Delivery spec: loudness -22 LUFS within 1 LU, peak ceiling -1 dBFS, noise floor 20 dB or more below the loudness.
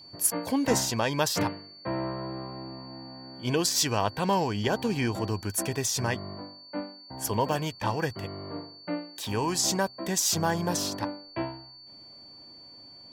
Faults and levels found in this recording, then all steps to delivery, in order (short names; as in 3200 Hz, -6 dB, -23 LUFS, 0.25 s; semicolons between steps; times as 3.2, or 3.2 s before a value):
steady tone 4500 Hz; tone level -47 dBFS; loudness -28.5 LUFS; peak -10.5 dBFS; loudness target -22.0 LUFS
-> notch 4500 Hz, Q 30; gain +6.5 dB